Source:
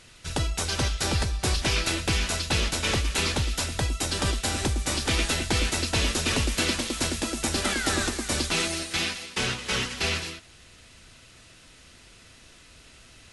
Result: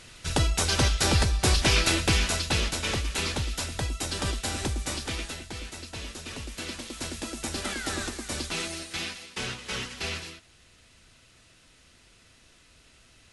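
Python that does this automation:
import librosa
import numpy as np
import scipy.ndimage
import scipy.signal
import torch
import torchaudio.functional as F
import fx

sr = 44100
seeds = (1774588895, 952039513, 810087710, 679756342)

y = fx.gain(x, sr, db=fx.line((1.98, 3.0), (2.91, -3.5), (4.84, -3.5), (5.49, -13.5), (6.34, -13.5), (7.27, -6.0)))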